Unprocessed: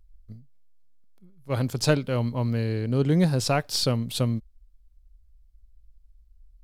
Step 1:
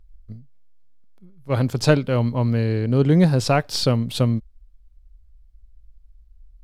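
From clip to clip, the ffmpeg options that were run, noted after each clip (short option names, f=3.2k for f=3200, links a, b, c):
-af "highshelf=f=5k:g=-8.5,volume=5.5dB"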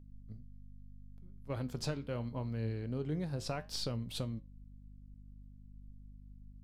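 -af "acompressor=threshold=-23dB:ratio=5,flanger=delay=8.8:depth=5.7:regen=75:speed=0.76:shape=triangular,aeval=exprs='val(0)+0.00562*(sin(2*PI*50*n/s)+sin(2*PI*2*50*n/s)/2+sin(2*PI*3*50*n/s)/3+sin(2*PI*4*50*n/s)/4+sin(2*PI*5*50*n/s)/5)':c=same,volume=-7.5dB"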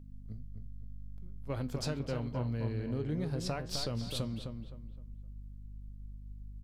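-filter_complex "[0:a]acompressor=threshold=-42dB:ratio=1.5,asplit=2[a][b];[b]adelay=258,lowpass=f=2.7k:p=1,volume=-6dB,asplit=2[c][d];[d]adelay=258,lowpass=f=2.7k:p=1,volume=0.33,asplit=2[e][f];[f]adelay=258,lowpass=f=2.7k:p=1,volume=0.33,asplit=2[g][h];[h]adelay=258,lowpass=f=2.7k:p=1,volume=0.33[i];[c][e][g][i]amix=inputs=4:normalize=0[j];[a][j]amix=inputs=2:normalize=0,volume=4.5dB"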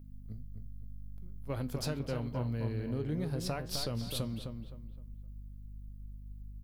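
-af "aexciter=amount=3.4:drive=3.4:freq=10k"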